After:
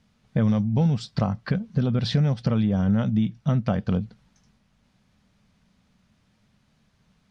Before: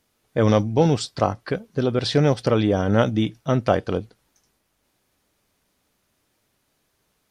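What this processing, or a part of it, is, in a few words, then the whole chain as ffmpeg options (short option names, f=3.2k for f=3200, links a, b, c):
jukebox: -af "lowpass=5.4k,lowshelf=f=260:t=q:w=3:g=7.5,acompressor=threshold=-23dB:ratio=4,volume=2dB"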